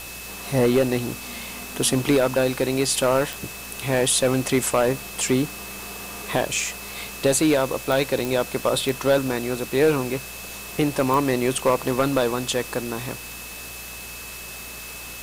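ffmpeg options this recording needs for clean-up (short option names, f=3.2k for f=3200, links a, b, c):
-af "adeclick=t=4,bandreject=f=59:t=h:w=4,bandreject=f=118:t=h:w=4,bandreject=f=177:t=h:w=4,bandreject=f=2.6k:w=30,afwtdn=0.014"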